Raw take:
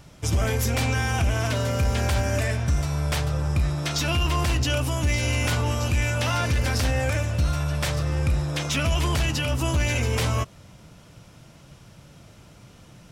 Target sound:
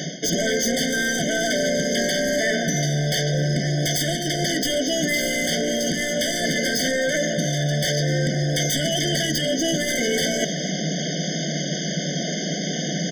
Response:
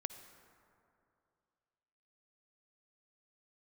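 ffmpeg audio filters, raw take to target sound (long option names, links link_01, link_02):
-filter_complex "[0:a]afftfilt=real='re*between(b*sr/4096,140,6700)':imag='im*between(b*sr/4096,140,6700)':win_size=4096:overlap=0.75,asplit=2[link_01][link_02];[link_02]alimiter=limit=-23.5dB:level=0:latency=1:release=244,volume=2.5dB[link_03];[link_01][link_03]amix=inputs=2:normalize=0,crystalizer=i=2.5:c=0,aeval=exprs='0.562*sin(PI/2*3.55*val(0)/0.562)':channel_layout=same,areverse,acompressor=threshold=-23dB:ratio=12,areverse,asplit=2[link_04][link_05];[link_05]adelay=256.6,volume=-16dB,highshelf=frequency=4000:gain=-5.77[link_06];[link_04][link_06]amix=inputs=2:normalize=0,afftfilt=real='re*eq(mod(floor(b*sr/1024/740),2),0)':imag='im*eq(mod(floor(b*sr/1024/740),2),0)':win_size=1024:overlap=0.75,volume=4.5dB"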